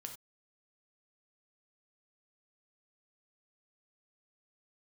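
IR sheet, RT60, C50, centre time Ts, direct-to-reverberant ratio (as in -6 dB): no single decay rate, 8.5 dB, 15 ms, 4.0 dB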